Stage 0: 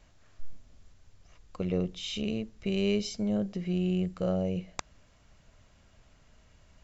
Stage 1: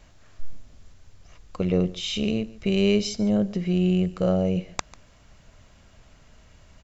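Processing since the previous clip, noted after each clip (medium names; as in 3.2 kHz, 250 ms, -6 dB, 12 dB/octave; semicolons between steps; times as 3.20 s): delay 144 ms -20.5 dB; trim +7 dB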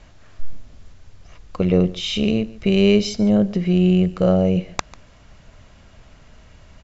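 distance through air 61 m; trim +6 dB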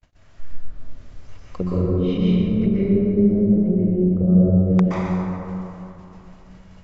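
gate -44 dBFS, range -39 dB; low-pass that closes with the level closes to 310 Hz, closed at -16 dBFS; plate-style reverb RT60 3.2 s, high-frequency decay 0.4×, pre-delay 110 ms, DRR -7 dB; trim -5 dB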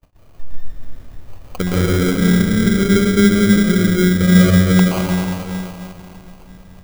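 sample-rate reducer 1.8 kHz, jitter 0%; trim +4.5 dB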